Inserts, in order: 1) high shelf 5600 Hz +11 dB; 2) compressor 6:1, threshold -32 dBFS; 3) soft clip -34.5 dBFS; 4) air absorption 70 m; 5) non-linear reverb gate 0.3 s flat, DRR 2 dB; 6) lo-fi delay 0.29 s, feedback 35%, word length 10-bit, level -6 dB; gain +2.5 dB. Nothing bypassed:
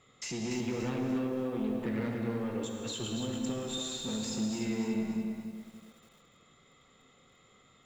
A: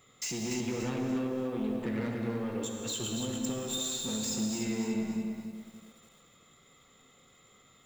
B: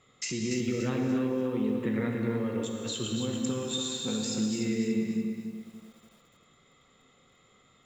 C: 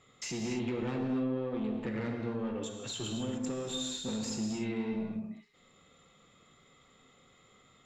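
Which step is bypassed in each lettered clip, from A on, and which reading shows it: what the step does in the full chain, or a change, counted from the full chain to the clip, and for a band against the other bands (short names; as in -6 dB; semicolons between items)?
4, 8 kHz band +5.5 dB; 3, distortion -12 dB; 6, loudness change -1.0 LU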